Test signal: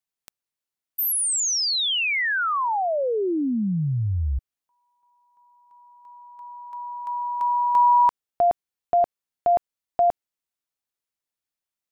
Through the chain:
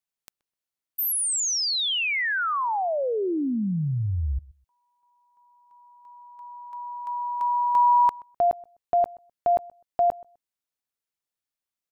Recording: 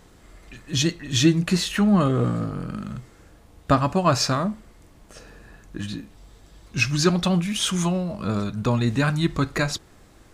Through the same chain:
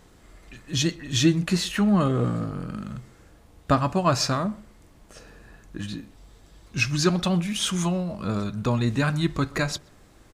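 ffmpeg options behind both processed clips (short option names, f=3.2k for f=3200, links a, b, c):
-filter_complex "[0:a]asplit=2[a][b];[b]adelay=127,lowpass=f=1.6k:p=1,volume=-22dB,asplit=2[c][d];[d]adelay=127,lowpass=f=1.6k:p=1,volume=0.18[e];[a][c][e]amix=inputs=3:normalize=0,volume=-2dB"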